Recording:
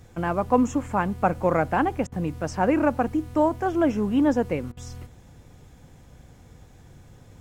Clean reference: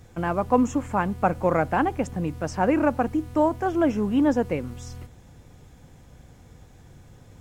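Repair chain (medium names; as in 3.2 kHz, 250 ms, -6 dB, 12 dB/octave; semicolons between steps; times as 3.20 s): interpolate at 2.07/4.72 s, 49 ms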